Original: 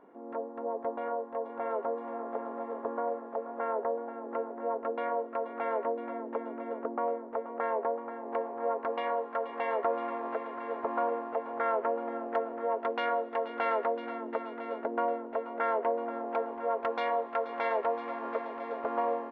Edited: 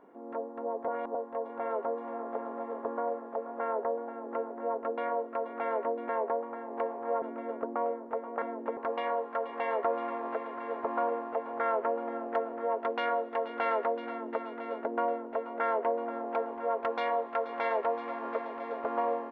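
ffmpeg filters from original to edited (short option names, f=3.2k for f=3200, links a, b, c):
-filter_complex "[0:a]asplit=7[a][b][c][d][e][f][g];[a]atrim=end=0.882[h];[b]atrim=start=0.878:end=1.152,asetpts=PTS-STARTPTS,areverse[i];[c]atrim=start=1.148:end=6.092[j];[d]atrim=start=7.638:end=8.772[k];[e]atrim=start=6.438:end=7.642[l];[f]atrim=start=6.088:end=6.442[m];[g]atrim=start=8.768[n];[h][i]acrossfade=d=0.004:c1=hsin:c2=hsin[o];[o][j]acrossfade=d=0.004:c1=hsin:c2=hsin[p];[p][k]acrossfade=d=0.004:c1=hsin:c2=hsin[q];[q][l]acrossfade=d=0.004:c1=hsin:c2=hsin[r];[r][m]acrossfade=d=0.004:c1=hsin:c2=hsin[s];[s][n]acrossfade=d=0.004:c1=hsin:c2=hsin"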